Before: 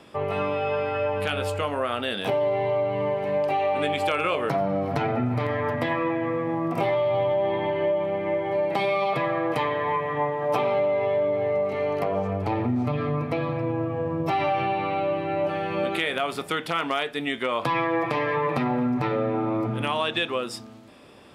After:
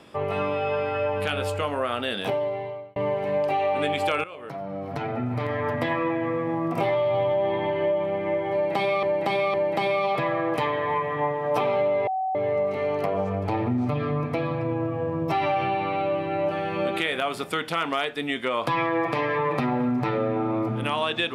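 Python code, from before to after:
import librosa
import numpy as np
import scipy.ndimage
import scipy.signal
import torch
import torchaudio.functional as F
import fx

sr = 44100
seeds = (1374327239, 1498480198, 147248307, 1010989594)

y = fx.edit(x, sr, fx.fade_out_span(start_s=2.2, length_s=0.76),
    fx.fade_in_from(start_s=4.24, length_s=1.51, floor_db=-18.5),
    fx.repeat(start_s=8.52, length_s=0.51, count=3),
    fx.bleep(start_s=11.05, length_s=0.28, hz=757.0, db=-23.5), tone=tone)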